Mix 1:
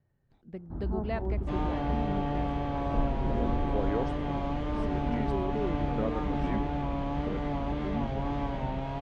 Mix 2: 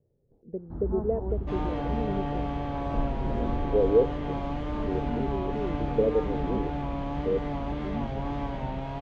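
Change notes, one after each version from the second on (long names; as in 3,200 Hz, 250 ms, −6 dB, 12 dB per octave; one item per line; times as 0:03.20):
speech: add low-pass with resonance 470 Hz, resonance Q 5.2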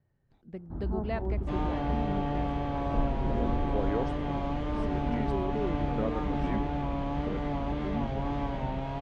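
speech: remove low-pass with resonance 470 Hz, resonance Q 5.2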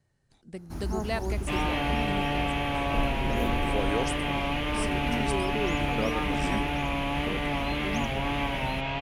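first sound: remove moving average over 18 samples
second sound: add low-pass with resonance 2,600 Hz, resonance Q 3.2
master: remove head-to-tape spacing loss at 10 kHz 36 dB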